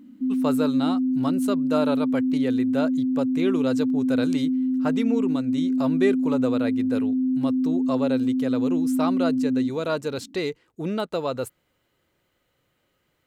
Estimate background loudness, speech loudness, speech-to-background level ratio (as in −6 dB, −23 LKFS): −23.5 LKFS, −29.0 LKFS, −5.5 dB